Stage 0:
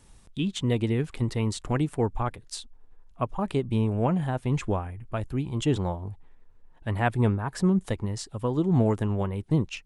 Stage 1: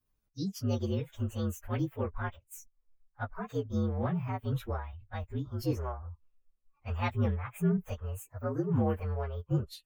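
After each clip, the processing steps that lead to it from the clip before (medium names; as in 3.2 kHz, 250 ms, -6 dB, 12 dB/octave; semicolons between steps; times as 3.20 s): frequency axis rescaled in octaves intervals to 118%; spectral noise reduction 17 dB; trim -4.5 dB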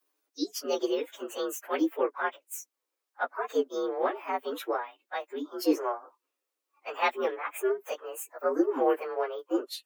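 steep high-pass 280 Hz 96 dB/octave; trim +8.5 dB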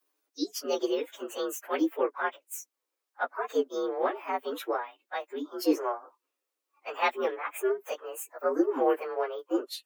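no audible change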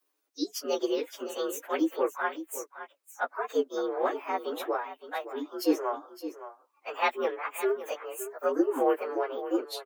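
delay 564 ms -12.5 dB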